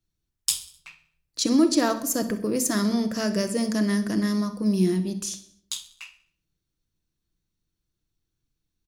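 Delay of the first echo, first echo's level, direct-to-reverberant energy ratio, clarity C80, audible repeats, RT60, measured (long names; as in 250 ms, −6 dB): 64 ms, −15.5 dB, 7.5 dB, 16.5 dB, 3, 0.60 s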